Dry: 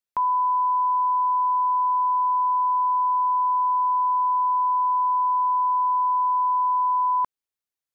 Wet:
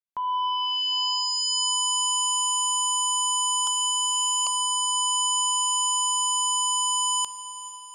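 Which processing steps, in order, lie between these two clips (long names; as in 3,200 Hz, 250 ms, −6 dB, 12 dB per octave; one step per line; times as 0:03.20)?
fade in at the beginning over 1.76 s
0:03.67–0:04.47: spectral tilt +5.5 dB per octave
sine wavefolder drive 15 dB, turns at −18 dBFS
feedback delay with all-pass diffusion 461 ms, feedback 56%, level −16 dB
spring reverb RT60 3.8 s, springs 33/53 ms, chirp 30 ms, DRR 8.5 dB
level −5 dB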